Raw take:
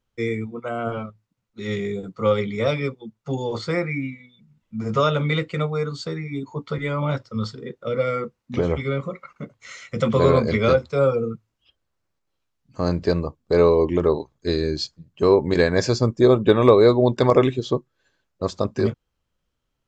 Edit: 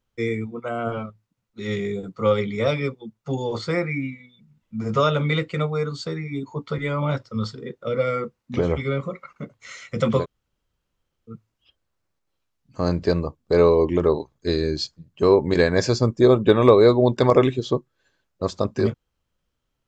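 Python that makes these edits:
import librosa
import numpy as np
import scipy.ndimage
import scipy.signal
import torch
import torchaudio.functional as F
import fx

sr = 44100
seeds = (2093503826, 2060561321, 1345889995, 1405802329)

y = fx.edit(x, sr, fx.room_tone_fill(start_s=10.21, length_s=1.11, crossfade_s=0.1), tone=tone)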